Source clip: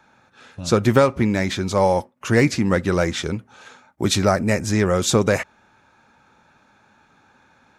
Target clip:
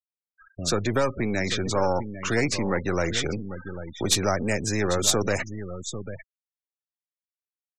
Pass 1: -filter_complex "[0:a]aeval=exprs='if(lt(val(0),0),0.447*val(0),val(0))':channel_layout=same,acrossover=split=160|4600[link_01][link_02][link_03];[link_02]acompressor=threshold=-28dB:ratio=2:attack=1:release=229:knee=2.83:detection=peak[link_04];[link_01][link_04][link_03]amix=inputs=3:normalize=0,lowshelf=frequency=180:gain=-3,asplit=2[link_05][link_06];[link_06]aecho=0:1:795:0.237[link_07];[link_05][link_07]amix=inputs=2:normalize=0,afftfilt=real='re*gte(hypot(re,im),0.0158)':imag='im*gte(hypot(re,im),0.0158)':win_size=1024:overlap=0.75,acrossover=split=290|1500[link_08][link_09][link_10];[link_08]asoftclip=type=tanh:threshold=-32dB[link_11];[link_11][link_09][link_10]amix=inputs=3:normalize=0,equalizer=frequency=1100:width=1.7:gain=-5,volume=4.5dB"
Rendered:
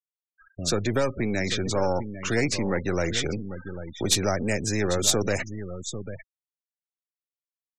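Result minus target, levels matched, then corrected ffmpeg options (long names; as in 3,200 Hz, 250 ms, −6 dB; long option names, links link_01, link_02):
1,000 Hz band −2.5 dB
-filter_complex "[0:a]aeval=exprs='if(lt(val(0),0),0.447*val(0),val(0))':channel_layout=same,acrossover=split=160|4600[link_01][link_02][link_03];[link_02]acompressor=threshold=-28dB:ratio=2:attack=1:release=229:knee=2.83:detection=peak[link_04];[link_01][link_04][link_03]amix=inputs=3:normalize=0,lowshelf=frequency=180:gain=-3,asplit=2[link_05][link_06];[link_06]aecho=0:1:795:0.237[link_07];[link_05][link_07]amix=inputs=2:normalize=0,afftfilt=real='re*gte(hypot(re,im),0.0158)':imag='im*gte(hypot(re,im),0.0158)':win_size=1024:overlap=0.75,acrossover=split=290|1500[link_08][link_09][link_10];[link_08]asoftclip=type=tanh:threshold=-32dB[link_11];[link_11][link_09][link_10]amix=inputs=3:normalize=0,volume=4.5dB"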